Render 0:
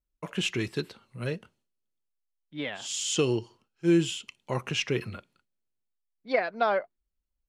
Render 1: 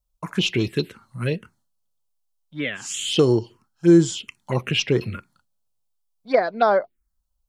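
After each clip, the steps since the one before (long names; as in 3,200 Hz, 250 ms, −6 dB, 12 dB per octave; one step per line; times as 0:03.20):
phaser swept by the level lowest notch 320 Hz, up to 2,700 Hz, full sweep at −23 dBFS
level +9 dB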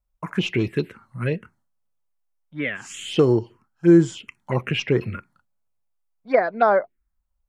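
high shelf with overshoot 2,800 Hz −8 dB, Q 1.5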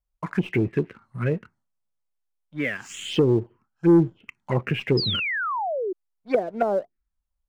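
treble cut that deepens with the level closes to 470 Hz, closed at −15.5 dBFS
leveller curve on the samples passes 1
sound drawn into the spectrogram fall, 0:04.97–0:05.93, 350–5,200 Hz −23 dBFS
level −3.5 dB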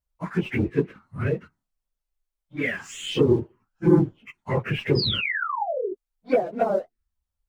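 random phases in long frames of 50 ms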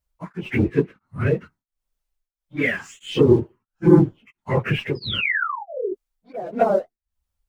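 tremolo along a rectified sine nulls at 1.5 Hz
level +5 dB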